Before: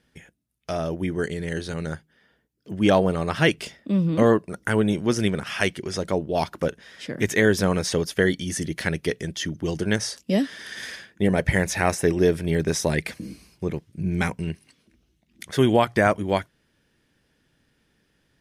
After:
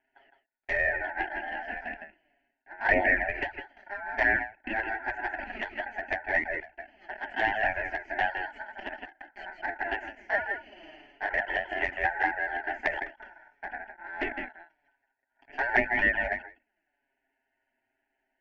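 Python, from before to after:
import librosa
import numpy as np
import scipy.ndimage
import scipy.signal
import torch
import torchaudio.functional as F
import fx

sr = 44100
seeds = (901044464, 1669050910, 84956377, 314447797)

p1 = np.where(x < 0.0, 10.0 ** (-12.0 / 20.0) * x, x)
p2 = fx.rider(p1, sr, range_db=4, speed_s=2.0)
p3 = p1 + F.gain(torch.from_numpy(p2), 1.0).numpy()
p4 = fx.cabinet(p3, sr, low_hz=330.0, low_slope=24, high_hz=2000.0, hz=(400.0, 650.0, 1700.0), db=(-7, 4, -7))
p5 = p4 * np.sin(2.0 * np.pi * 1200.0 * np.arange(len(p4)) / sr)
p6 = fx.fixed_phaser(p5, sr, hz=750.0, stages=8)
p7 = p6 + fx.echo_single(p6, sr, ms=161, db=-5.0, dry=0)
p8 = fx.env_flanger(p7, sr, rest_ms=7.6, full_db=-14.5)
y = fx.end_taper(p8, sr, db_per_s=210.0)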